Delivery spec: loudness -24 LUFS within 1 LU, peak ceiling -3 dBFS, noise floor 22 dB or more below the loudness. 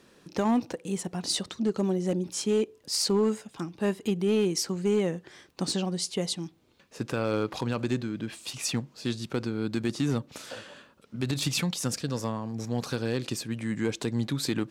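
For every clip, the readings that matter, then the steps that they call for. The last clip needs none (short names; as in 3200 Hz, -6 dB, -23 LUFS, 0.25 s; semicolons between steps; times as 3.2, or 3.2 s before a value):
clipped 0.5%; flat tops at -18.5 dBFS; loudness -29.5 LUFS; peak -18.5 dBFS; loudness target -24.0 LUFS
-> clip repair -18.5 dBFS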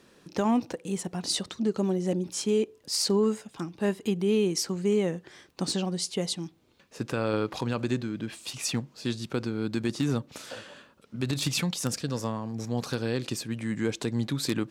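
clipped 0.0%; loudness -29.5 LUFS; peak -10.0 dBFS; loudness target -24.0 LUFS
-> gain +5.5 dB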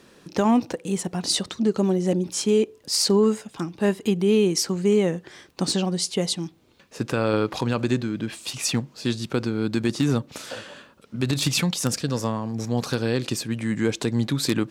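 loudness -24.0 LUFS; peak -4.5 dBFS; noise floor -55 dBFS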